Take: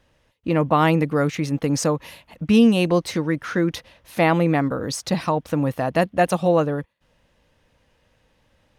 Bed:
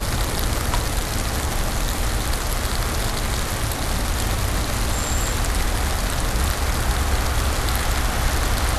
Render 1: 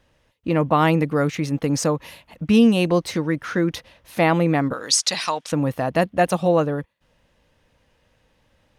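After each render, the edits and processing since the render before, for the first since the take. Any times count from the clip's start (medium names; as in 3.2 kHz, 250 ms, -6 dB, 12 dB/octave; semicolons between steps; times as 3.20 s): 4.73–5.52 s: frequency weighting ITU-R 468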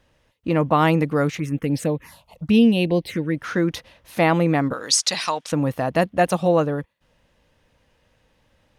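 1.38–3.36 s: touch-sensitive phaser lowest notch 230 Hz, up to 1.3 kHz, full sweep at -17 dBFS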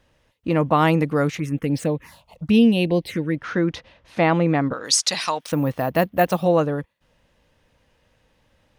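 1.69–2.43 s: median filter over 3 samples; 3.35–4.85 s: distance through air 99 m; 5.40–6.44 s: careless resampling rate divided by 3×, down filtered, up hold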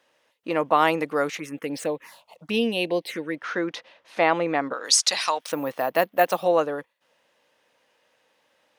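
high-pass 440 Hz 12 dB/octave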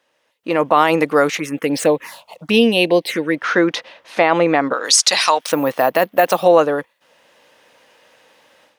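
peak limiter -12 dBFS, peak gain reduction 7 dB; level rider gain up to 14 dB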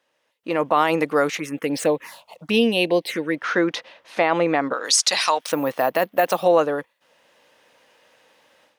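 trim -5 dB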